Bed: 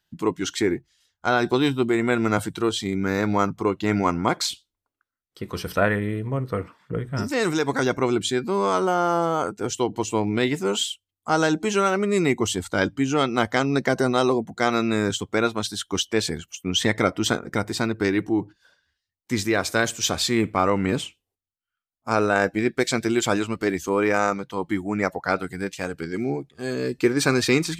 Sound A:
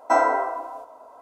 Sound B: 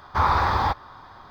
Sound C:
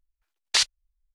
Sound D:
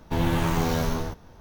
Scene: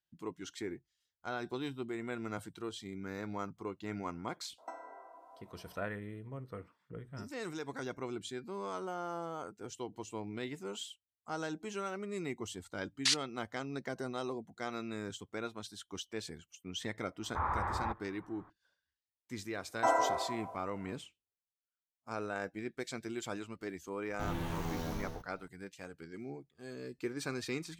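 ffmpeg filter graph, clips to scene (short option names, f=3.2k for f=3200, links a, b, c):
-filter_complex "[1:a]asplit=2[a][b];[0:a]volume=-18.5dB[c];[a]acompressor=threshold=-31dB:ratio=16:attack=50:release=649:knee=1:detection=rms[d];[3:a]highpass=1.4k[e];[2:a]lowpass=f=2.2k:w=0.5412,lowpass=f=2.2k:w=1.3066[f];[b]asplit=2[g][h];[h]adelay=151.6,volume=-14dB,highshelf=f=4k:g=-3.41[i];[g][i]amix=inputs=2:normalize=0[j];[d]atrim=end=1.21,asetpts=PTS-STARTPTS,volume=-14.5dB,afade=t=in:d=0.004:c=hsin,afade=t=out:st=1.206:d=0.004:c=hsin,adelay=4580[k];[e]atrim=end=1.14,asetpts=PTS-STARTPTS,volume=-8dB,afade=t=in:d=0.004:c=hsin,afade=t=out:st=1.136:d=0.004:c=hsin,adelay=12510[l];[f]atrim=end=1.3,asetpts=PTS-STARTPTS,volume=-14dB,afade=t=in:d=0.004:c=hsin,afade=t=out:st=1.296:d=0.004:c=hsin,adelay=17200[m];[j]atrim=end=1.21,asetpts=PTS-STARTPTS,volume=-10dB,afade=t=in:d=0.004:c=hsin,afade=t=out:st=1.206:d=0.004:c=hsin,adelay=19730[n];[4:a]atrim=end=1.4,asetpts=PTS-STARTPTS,volume=-14dB,afade=t=in:d=0.004:c=hsin,afade=t=out:st=1.396:d=0.004:c=hsin,adelay=24080[o];[c][k][l][m][n][o]amix=inputs=6:normalize=0"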